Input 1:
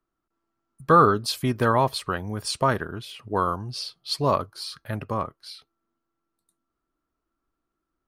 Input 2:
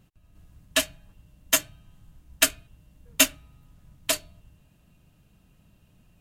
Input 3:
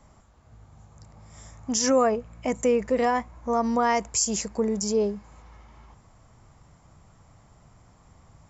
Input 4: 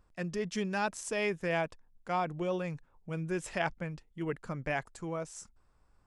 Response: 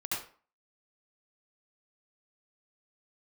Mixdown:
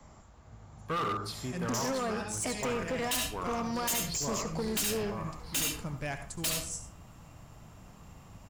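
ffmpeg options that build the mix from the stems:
-filter_complex "[0:a]volume=-16.5dB,asplit=2[a][b];[b]volume=-5dB[c];[1:a]acrossover=split=240|3000[d][e][f];[e]acompressor=threshold=-35dB:ratio=6[g];[d][g][f]amix=inputs=3:normalize=0,adelay=2350,volume=1.5dB,asplit=2[h][i];[i]volume=-8.5dB[j];[2:a]acrossover=split=91|320|1400|5200[k][l][m][n][o];[k]acompressor=threshold=-57dB:ratio=4[p];[l]acompressor=threshold=-41dB:ratio=4[q];[m]acompressor=threshold=-38dB:ratio=4[r];[n]acompressor=threshold=-41dB:ratio=4[s];[o]acompressor=threshold=-40dB:ratio=4[t];[p][q][r][s][t]amix=inputs=5:normalize=0,volume=1dB,asplit=3[u][v][w];[v]volume=-15dB[x];[3:a]bass=f=250:g=7,treble=f=4k:g=14,adelay=1350,volume=-6dB,asplit=2[y][z];[z]volume=-10.5dB[aa];[w]apad=whole_len=327024[ab];[y][ab]sidechaincompress=threshold=-46dB:ratio=8:attack=34:release=215[ac];[4:a]atrim=start_sample=2205[ad];[c][j][x][aa]amix=inputs=4:normalize=0[ae];[ae][ad]afir=irnorm=-1:irlink=0[af];[a][h][u][ac][af]amix=inputs=5:normalize=0,asoftclip=type=hard:threshold=-28.5dB"

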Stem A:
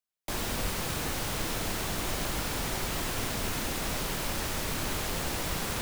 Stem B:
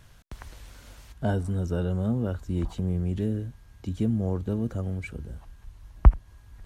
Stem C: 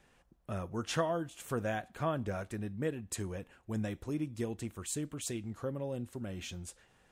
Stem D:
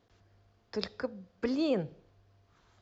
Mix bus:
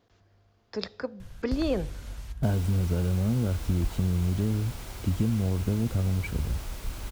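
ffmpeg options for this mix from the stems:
-filter_complex "[0:a]bandreject=f=1.8k:w=15,adelay=2150,volume=-11dB[a];[1:a]adelay=1200,volume=1.5dB[b];[3:a]acontrast=31,volume=-3.5dB[c];[b]lowshelf=f=190:g=9.5,acompressor=threshold=-22dB:ratio=6,volume=0dB[d];[a][c][d]amix=inputs=3:normalize=0"

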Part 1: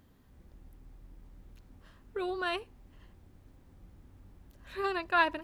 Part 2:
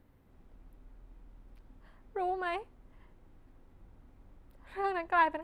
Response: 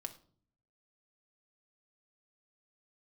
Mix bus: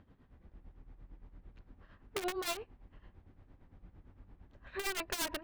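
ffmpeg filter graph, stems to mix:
-filter_complex "[0:a]asoftclip=type=tanh:threshold=-28.5dB,volume=2dB[a];[1:a]volume=-1,volume=-10dB[b];[a][b]amix=inputs=2:normalize=0,lowpass=2.7k,aeval=exprs='(mod(25.1*val(0)+1,2)-1)/25.1':c=same,tremolo=f=8.8:d=0.73"

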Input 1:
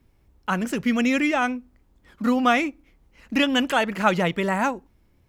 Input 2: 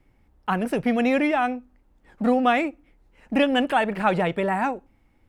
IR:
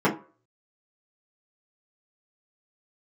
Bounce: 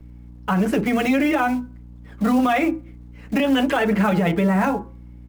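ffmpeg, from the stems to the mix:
-filter_complex "[0:a]aemphasis=mode=reproduction:type=cd,acrusher=bits=5:mode=log:mix=0:aa=0.000001,volume=0.5dB,asplit=2[a][b];[b]volume=-19dB[c];[1:a]highpass=f=200:w=0.5412,highpass=f=200:w=1.3066,aeval=exprs='val(0)+0.00891*(sin(2*PI*60*n/s)+sin(2*PI*2*60*n/s)/2+sin(2*PI*3*60*n/s)/3+sin(2*PI*4*60*n/s)/4+sin(2*PI*5*60*n/s)/5)':c=same,adelay=7.8,volume=1.5dB[d];[2:a]atrim=start_sample=2205[e];[c][e]afir=irnorm=-1:irlink=0[f];[a][d][f]amix=inputs=3:normalize=0,alimiter=limit=-11dB:level=0:latency=1:release=36"

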